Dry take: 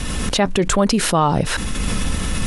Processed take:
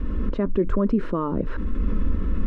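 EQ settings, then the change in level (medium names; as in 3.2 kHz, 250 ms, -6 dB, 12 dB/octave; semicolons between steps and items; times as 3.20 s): resonant low-pass 1 kHz, resonance Q 1.8; bass shelf 360 Hz +9.5 dB; static phaser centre 320 Hz, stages 4; -7.5 dB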